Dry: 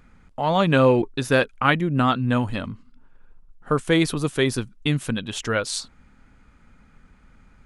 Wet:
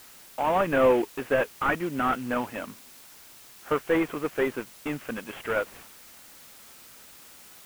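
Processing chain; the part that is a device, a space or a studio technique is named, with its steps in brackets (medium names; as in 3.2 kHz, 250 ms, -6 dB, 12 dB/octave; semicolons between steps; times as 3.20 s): army field radio (band-pass 360–2800 Hz; CVSD coder 16 kbps; white noise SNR 21 dB)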